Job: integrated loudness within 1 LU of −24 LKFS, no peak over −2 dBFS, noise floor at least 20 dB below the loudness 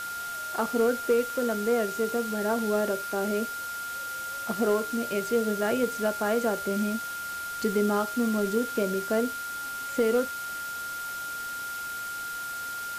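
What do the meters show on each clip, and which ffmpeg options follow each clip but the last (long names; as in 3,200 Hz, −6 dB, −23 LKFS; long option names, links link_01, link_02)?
interfering tone 1,400 Hz; level of the tone −33 dBFS; background noise floor −35 dBFS; target noise floor −49 dBFS; integrated loudness −28.5 LKFS; sample peak −14.5 dBFS; target loudness −24.0 LKFS
→ -af "bandreject=frequency=1400:width=30"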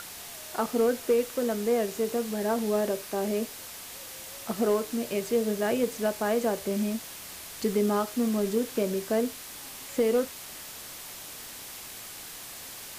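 interfering tone none found; background noise floor −43 dBFS; target noise floor −50 dBFS
→ -af "afftdn=noise_reduction=7:noise_floor=-43"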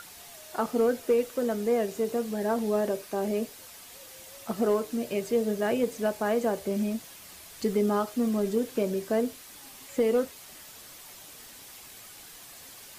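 background noise floor −48 dBFS; target noise floor −49 dBFS
→ -af "afftdn=noise_reduction=6:noise_floor=-48"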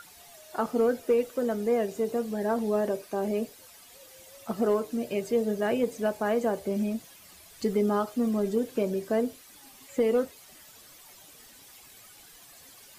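background noise floor −52 dBFS; integrated loudness −28.5 LKFS; sample peak −15.5 dBFS; target loudness −24.0 LKFS
→ -af "volume=4.5dB"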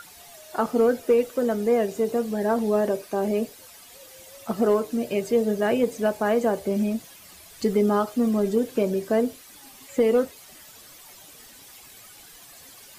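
integrated loudness −24.0 LKFS; sample peak −11.0 dBFS; background noise floor −48 dBFS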